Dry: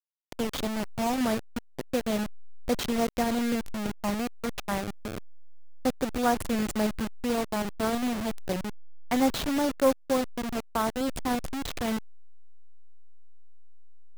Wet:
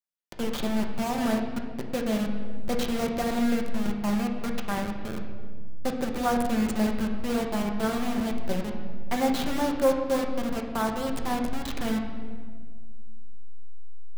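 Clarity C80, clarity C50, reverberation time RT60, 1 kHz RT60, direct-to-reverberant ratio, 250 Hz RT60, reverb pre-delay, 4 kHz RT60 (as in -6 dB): 7.0 dB, 5.5 dB, 1.7 s, 1.5 s, 1.5 dB, 2.5 s, 5 ms, 1.2 s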